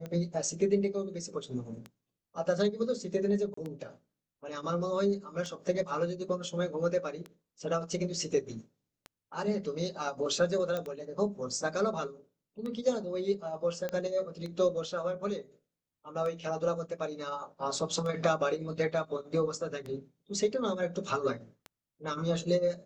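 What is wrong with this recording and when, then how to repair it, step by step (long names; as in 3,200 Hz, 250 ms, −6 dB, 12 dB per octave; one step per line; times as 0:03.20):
scratch tick 33 1/3 rpm −27 dBFS
0:03.54–0:03.57: drop-out 34 ms
0:10.77: click −21 dBFS
0:13.89: click −21 dBFS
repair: click removal
repair the gap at 0:03.54, 34 ms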